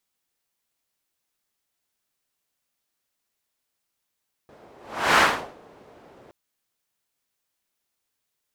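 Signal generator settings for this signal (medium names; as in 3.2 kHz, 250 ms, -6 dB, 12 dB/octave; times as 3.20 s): whoosh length 1.82 s, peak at 0.69 s, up 0.44 s, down 0.43 s, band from 510 Hz, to 1.4 kHz, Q 1.1, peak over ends 33.5 dB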